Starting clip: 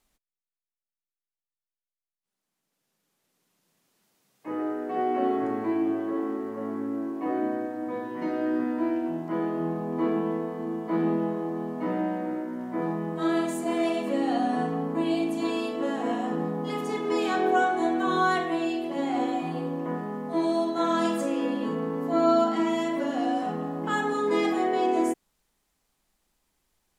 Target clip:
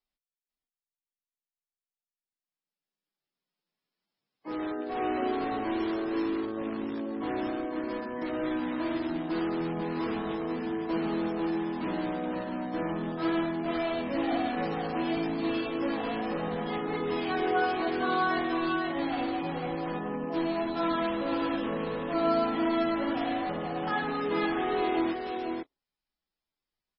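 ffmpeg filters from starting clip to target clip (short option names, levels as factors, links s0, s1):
-filter_complex "[0:a]acrossover=split=3600[s0][s1];[s1]acompressor=threshold=0.00158:ratio=4:attack=1:release=60[s2];[s0][s2]amix=inputs=2:normalize=0,afftdn=nr=17:nf=-47,highshelf=f=2000:g=6,asplit=2[s3][s4];[s4]aeval=exprs='(mod(15.8*val(0)+1,2)-1)/15.8':c=same,volume=0.398[s5];[s3][s5]amix=inputs=2:normalize=0,acrusher=bits=5:mode=log:mix=0:aa=0.000001,asplit=2[s6][s7];[s7]aecho=0:1:448|493:0.112|0.596[s8];[s6][s8]amix=inputs=2:normalize=0,volume=0.531" -ar 22050 -c:a libmp3lame -b:a 16k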